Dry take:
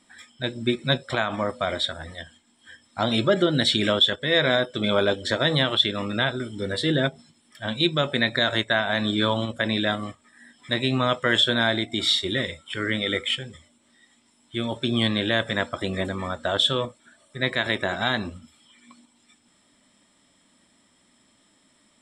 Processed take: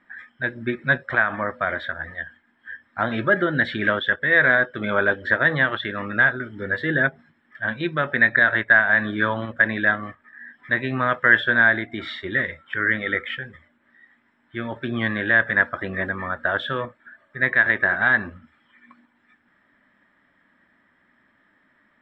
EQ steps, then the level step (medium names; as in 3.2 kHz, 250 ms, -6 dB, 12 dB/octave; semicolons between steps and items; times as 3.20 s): resonant low-pass 1.7 kHz, resonance Q 5.5; -2.5 dB